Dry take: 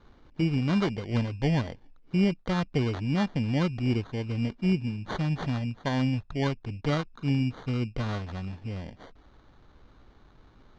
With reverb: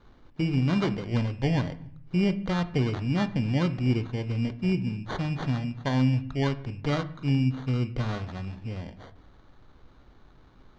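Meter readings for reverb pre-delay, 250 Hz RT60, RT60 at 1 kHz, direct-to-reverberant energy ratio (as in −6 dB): 7 ms, 0.95 s, 0.65 s, 11.0 dB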